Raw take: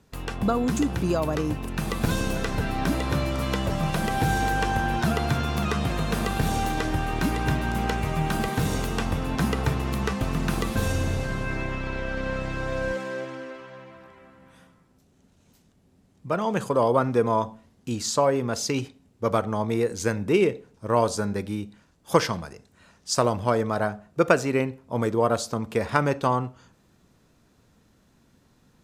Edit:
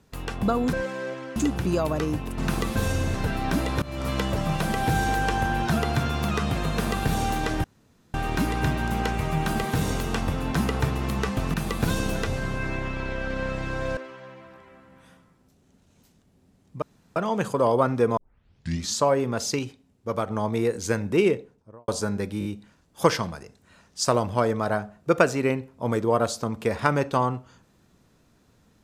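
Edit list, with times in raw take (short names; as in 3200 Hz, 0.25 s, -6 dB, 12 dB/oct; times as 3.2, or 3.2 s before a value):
1.75–2.48 swap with 10.38–11.14
3.16–3.43 fade in, from -19.5 dB
6.98 insert room tone 0.50 s
12.84–13.47 move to 0.73
16.32 insert room tone 0.34 s
17.33 tape start 0.78 s
18.75–19.46 gain -4 dB
20.41–21.04 studio fade out
21.55 stutter 0.02 s, 4 plays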